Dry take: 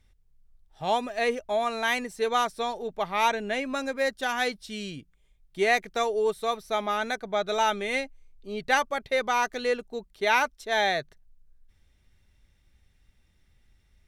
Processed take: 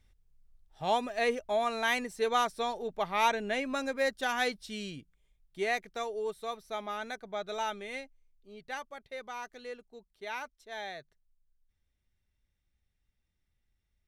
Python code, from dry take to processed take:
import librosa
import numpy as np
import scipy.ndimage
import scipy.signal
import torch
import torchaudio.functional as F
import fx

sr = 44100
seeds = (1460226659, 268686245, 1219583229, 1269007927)

y = fx.gain(x, sr, db=fx.line((4.66, -3.0), (5.98, -9.5), (7.61, -9.5), (8.59, -16.0)))